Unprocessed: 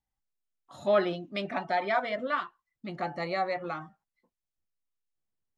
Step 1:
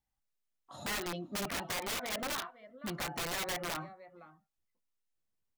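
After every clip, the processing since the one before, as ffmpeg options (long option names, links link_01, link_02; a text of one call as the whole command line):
ffmpeg -i in.wav -filter_complex "[0:a]acompressor=threshold=-30dB:ratio=20,asplit=2[link_01][link_02];[link_02]adelay=513.1,volume=-18dB,highshelf=frequency=4000:gain=-11.5[link_03];[link_01][link_03]amix=inputs=2:normalize=0,aeval=exprs='(mod(35.5*val(0)+1,2)-1)/35.5':channel_layout=same" out.wav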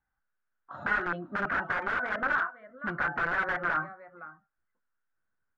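ffmpeg -i in.wav -af "lowpass=frequency=1500:width_type=q:width=7.6,volume=2dB" out.wav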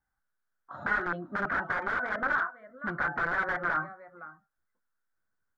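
ffmpeg -i in.wav -af "equalizer=frequency=2700:width_type=o:width=0.35:gain=-8.5" out.wav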